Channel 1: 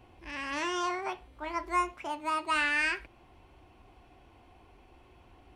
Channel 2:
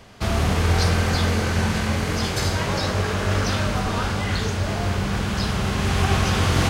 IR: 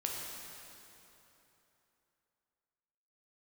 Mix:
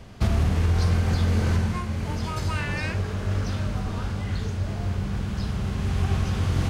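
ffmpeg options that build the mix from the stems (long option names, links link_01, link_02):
-filter_complex "[0:a]volume=-5dB[link_01];[1:a]lowshelf=frequency=270:gain=11.5,volume=-4dB,afade=type=out:start_time=1.6:duration=0.22:silence=0.375837[link_02];[link_01][link_02]amix=inputs=2:normalize=0,alimiter=limit=-13dB:level=0:latency=1:release=495"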